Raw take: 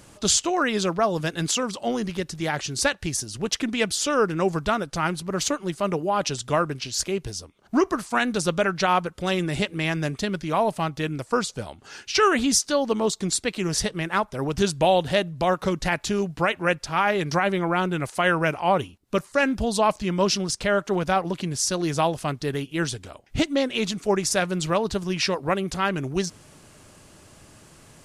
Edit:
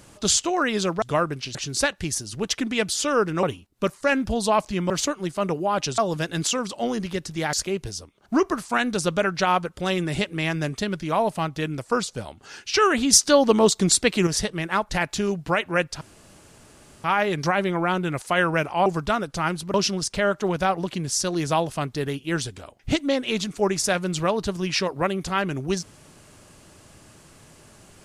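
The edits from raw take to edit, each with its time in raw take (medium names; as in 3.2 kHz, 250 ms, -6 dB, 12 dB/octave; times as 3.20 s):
1.02–2.57 s: swap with 6.41–6.94 s
4.45–5.33 s: swap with 18.74–20.21 s
12.54–13.68 s: gain +6 dB
14.30–15.80 s: delete
16.92 s: insert room tone 1.03 s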